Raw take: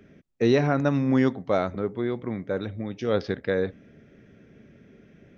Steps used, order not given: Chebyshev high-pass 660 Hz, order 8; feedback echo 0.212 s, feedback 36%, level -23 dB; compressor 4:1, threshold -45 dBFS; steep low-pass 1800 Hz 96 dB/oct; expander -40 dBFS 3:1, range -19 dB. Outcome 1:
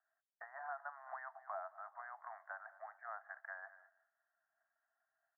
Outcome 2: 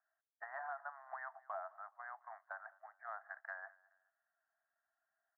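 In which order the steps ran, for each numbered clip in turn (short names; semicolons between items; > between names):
feedback echo > expander > Chebyshev high-pass > compressor > steep low-pass; Chebyshev high-pass > expander > steep low-pass > compressor > feedback echo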